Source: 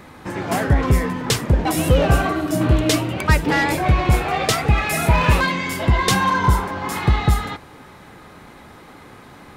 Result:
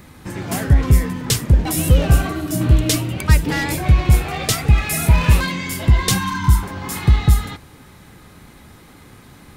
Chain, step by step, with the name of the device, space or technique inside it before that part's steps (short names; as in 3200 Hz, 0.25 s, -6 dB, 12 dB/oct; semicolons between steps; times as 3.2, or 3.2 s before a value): 6.18–6.63 elliptic band-stop 340–880 Hz; smiley-face EQ (low shelf 180 Hz +6.5 dB; bell 770 Hz -6 dB 2.6 oct; high shelf 6600 Hz +8.5 dB); gain -1 dB